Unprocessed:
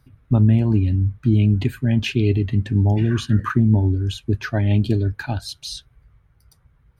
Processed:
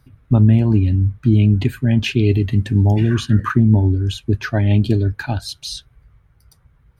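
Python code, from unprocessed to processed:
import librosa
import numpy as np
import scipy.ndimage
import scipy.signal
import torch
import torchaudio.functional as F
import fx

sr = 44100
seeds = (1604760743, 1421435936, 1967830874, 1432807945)

y = fx.high_shelf(x, sr, hz=7500.0, db=11.5, at=(2.29, 3.15))
y = F.gain(torch.from_numpy(y), 3.0).numpy()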